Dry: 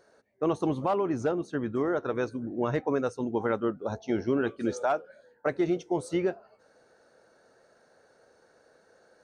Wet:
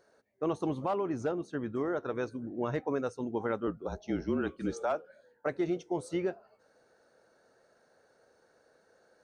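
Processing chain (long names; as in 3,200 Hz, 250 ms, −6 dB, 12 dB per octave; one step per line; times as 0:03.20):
0:03.67–0:04.95: frequency shifter −35 Hz
level −4.5 dB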